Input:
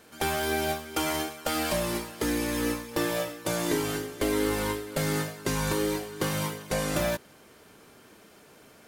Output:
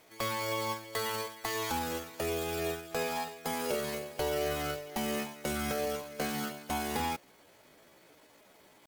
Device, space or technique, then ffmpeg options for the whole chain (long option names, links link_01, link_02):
chipmunk voice: -af "asetrate=62367,aresample=44100,atempo=0.707107,volume=-5.5dB"